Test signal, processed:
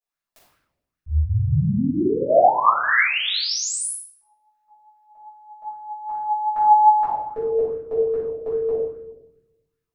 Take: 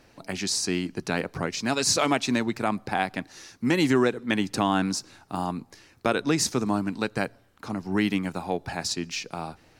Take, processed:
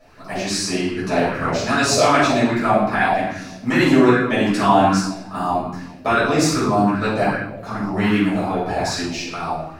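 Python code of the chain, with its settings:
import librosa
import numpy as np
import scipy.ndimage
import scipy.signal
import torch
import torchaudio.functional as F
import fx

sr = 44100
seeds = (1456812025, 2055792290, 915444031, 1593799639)

y = fx.room_shoebox(x, sr, seeds[0], volume_m3=360.0, walls='mixed', distance_m=6.1)
y = fx.bell_lfo(y, sr, hz=2.5, low_hz=600.0, high_hz=1600.0, db=11)
y = y * librosa.db_to_amplitude(-9.0)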